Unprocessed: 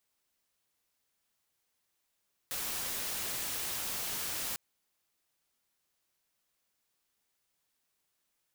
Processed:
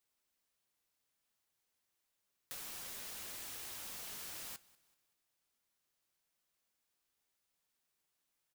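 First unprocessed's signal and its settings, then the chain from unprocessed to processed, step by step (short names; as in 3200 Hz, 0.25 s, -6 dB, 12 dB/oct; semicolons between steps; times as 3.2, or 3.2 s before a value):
noise white, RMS -36.5 dBFS 2.05 s
compressor, threshold -39 dBFS; flange 0.28 Hz, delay 2.3 ms, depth 7.9 ms, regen -72%; feedback echo 0.191 s, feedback 42%, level -22.5 dB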